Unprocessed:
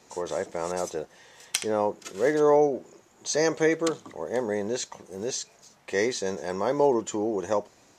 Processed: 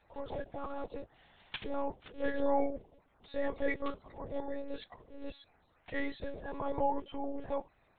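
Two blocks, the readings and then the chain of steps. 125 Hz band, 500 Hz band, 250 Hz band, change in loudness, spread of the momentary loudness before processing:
-11.0 dB, -12.5 dB, -9.0 dB, -11.0 dB, 12 LU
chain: coarse spectral quantiser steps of 30 dB; monotone LPC vocoder at 8 kHz 280 Hz; trim -8.5 dB

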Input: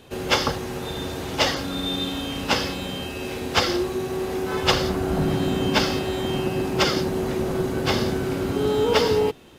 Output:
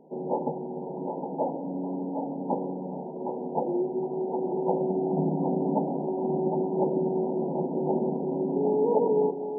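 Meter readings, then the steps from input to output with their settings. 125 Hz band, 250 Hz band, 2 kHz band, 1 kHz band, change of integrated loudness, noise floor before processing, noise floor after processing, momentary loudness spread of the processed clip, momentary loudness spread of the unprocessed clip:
-7.5 dB, -2.5 dB, under -40 dB, -4.0 dB, -5.0 dB, -32 dBFS, -36 dBFS, 9 LU, 9 LU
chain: FFT band-pass 140–980 Hz; thinning echo 763 ms, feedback 37%, high-pass 490 Hz, level -4 dB; trim -3 dB

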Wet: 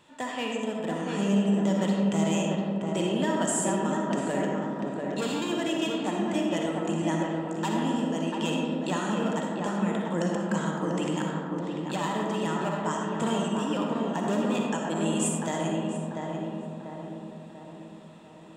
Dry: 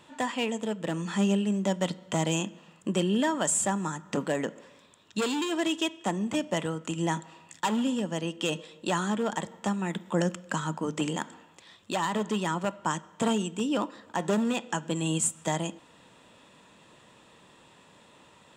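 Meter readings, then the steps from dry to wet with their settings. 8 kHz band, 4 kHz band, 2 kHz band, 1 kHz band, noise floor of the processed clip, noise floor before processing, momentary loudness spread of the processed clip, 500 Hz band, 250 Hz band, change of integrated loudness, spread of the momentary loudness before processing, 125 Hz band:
-2.5 dB, -1.0 dB, 0.0 dB, +1.0 dB, -45 dBFS, -57 dBFS, 8 LU, +2.5 dB, +3.0 dB, +1.5 dB, 7 LU, +2.0 dB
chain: on a send: filtered feedback delay 692 ms, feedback 55%, low-pass 1.6 kHz, level -3 dB; on the sum: algorithmic reverb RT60 2.1 s, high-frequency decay 0.35×, pre-delay 20 ms, DRR -0.5 dB; trim -4 dB

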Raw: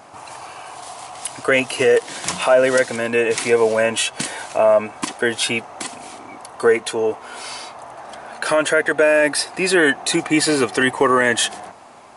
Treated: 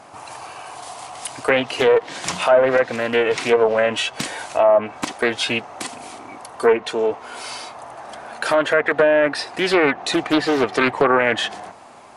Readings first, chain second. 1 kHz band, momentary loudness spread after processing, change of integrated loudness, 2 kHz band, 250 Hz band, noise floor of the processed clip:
+1.0 dB, 19 LU, -1.0 dB, -2.0 dB, -1.0 dB, -41 dBFS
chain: low-pass that closes with the level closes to 1.7 kHz, closed at -10.5 dBFS; loudspeaker Doppler distortion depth 0.41 ms

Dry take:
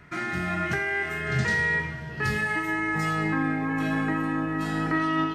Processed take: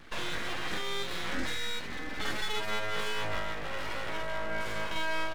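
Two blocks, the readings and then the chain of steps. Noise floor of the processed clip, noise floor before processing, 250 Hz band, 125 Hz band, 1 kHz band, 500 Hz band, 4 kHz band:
-36 dBFS, -37 dBFS, -16.0 dB, -15.5 dB, -7.0 dB, -4.0 dB, +5.5 dB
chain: compression 4:1, threshold -30 dBFS, peak gain reduction 8.5 dB; doubling 47 ms -3.5 dB; full-wave rectifier

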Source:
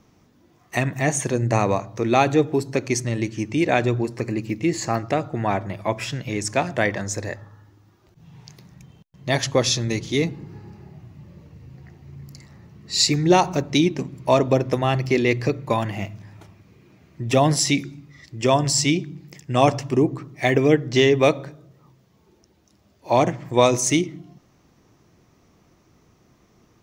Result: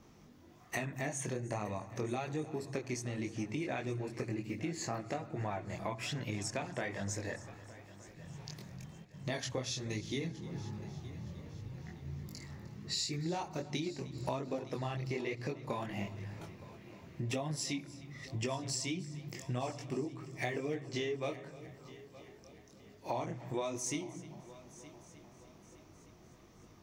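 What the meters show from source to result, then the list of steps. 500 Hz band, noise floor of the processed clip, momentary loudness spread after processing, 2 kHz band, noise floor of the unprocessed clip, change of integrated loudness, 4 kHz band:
-18.5 dB, -59 dBFS, 16 LU, -16.0 dB, -59 dBFS, -18.0 dB, -16.5 dB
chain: chorus voices 2, 1.2 Hz, delay 22 ms, depth 3 ms; compression 8:1, threshold -36 dBFS, peak gain reduction 21.5 dB; multi-head delay 306 ms, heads first and third, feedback 57%, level -19 dB; trim +1 dB

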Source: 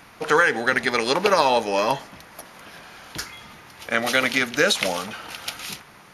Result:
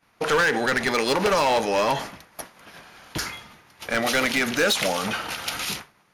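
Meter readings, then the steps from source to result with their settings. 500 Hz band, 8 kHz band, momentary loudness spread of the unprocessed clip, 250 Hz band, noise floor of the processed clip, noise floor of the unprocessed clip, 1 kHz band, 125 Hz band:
-1.0 dB, +1.0 dB, 16 LU, +1.0 dB, -62 dBFS, -48 dBFS, -1.5 dB, +2.0 dB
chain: expander -34 dBFS; overload inside the chain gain 17.5 dB; peak limiter -24.5 dBFS, peak gain reduction 7 dB; trim +8 dB

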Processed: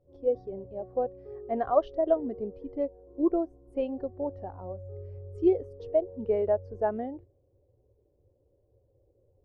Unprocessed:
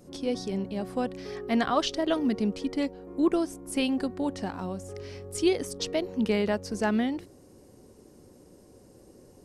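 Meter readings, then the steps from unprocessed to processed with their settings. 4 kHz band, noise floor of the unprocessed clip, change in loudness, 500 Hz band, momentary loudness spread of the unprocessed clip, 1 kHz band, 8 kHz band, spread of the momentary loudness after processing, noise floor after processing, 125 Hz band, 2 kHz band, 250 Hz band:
under -25 dB, -55 dBFS, -1.5 dB, +2.5 dB, 10 LU, -1.0 dB, under -35 dB, 15 LU, -69 dBFS, -4.5 dB, under -15 dB, -6.0 dB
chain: FFT filter 110 Hz 0 dB, 200 Hz -18 dB, 550 Hz -2 dB, 8 kHz -26 dB; spectral contrast expander 1.5:1; trim +7 dB

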